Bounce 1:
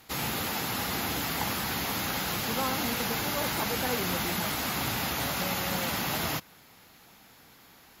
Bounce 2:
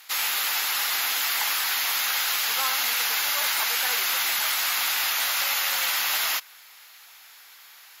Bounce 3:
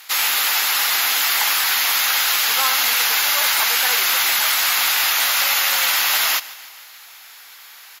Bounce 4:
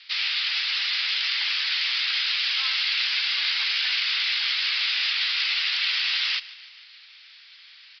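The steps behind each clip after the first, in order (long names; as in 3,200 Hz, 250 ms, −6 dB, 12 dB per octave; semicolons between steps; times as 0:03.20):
high-pass filter 1,400 Hz 12 dB per octave; level +8.5 dB
repeating echo 149 ms, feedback 56%, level −19 dB; level +7 dB
flat-topped band-pass 4,000 Hz, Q 0.82; downsampling to 11,025 Hz; level −2.5 dB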